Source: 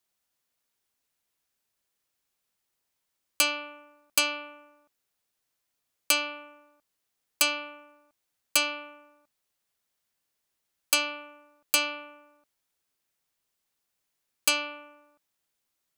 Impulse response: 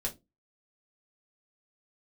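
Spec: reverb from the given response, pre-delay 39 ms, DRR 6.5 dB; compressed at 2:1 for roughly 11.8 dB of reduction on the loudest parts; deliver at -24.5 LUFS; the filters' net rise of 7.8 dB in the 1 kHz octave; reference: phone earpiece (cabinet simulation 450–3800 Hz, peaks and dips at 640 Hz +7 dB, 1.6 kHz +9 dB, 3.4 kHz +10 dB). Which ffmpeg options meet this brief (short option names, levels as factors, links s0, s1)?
-filter_complex "[0:a]equalizer=f=1000:t=o:g=7.5,acompressor=threshold=0.00891:ratio=2,asplit=2[s0][s1];[1:a]atrim=start_sample=2205,adelay=39[s2];[s1][s2]afir=irnorm=-1:irlink=0,volume=0.355[s3];[s0][s3]amix=inputs=2:normalize=0,highpass=450,equalizer=f=640:t=q:w=4:g=7,equalizer=f=1600:t=q:w=4:g=9,equalizer=f=3400:t=q:w=4:g=10,lowpass=f=3800:w=0.5412,lowpass=f=3800:w=1.3066,volume=3.76"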